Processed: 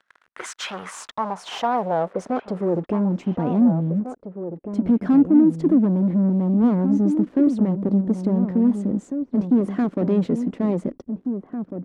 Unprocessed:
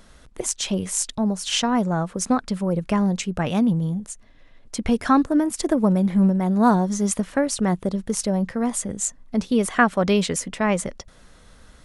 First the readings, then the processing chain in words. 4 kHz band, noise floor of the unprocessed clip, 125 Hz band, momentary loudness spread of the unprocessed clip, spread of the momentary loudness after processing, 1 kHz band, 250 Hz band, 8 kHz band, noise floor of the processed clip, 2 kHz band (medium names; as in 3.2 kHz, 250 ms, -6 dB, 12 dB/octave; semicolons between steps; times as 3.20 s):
no reading, -51 dBFS, +0.5 dB, 8 LU, 14 LU, -3.5 dB, +3.0 dB, under -15 dB, -61 dBFS, under -10 dB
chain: waveshaping leveller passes 5; band-pass sweep 1.6 kHz -> 280 Hz, 0.46–3.22 s; echo from a far wall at 300 m, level -8 dB; trim -4.5 dB